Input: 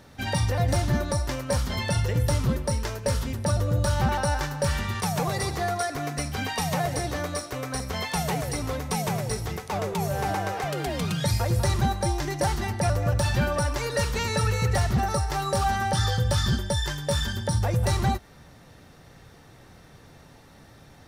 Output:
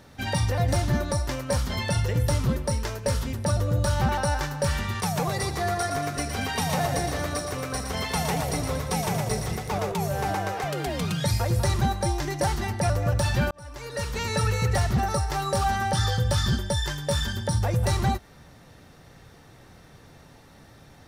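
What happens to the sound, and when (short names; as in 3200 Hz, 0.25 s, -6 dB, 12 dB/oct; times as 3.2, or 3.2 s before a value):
5.44–9.92 split-band echo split 560 Hz, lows 0.2 s, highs 0.116 s, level -6 dB
13.51–14.39 fade in linear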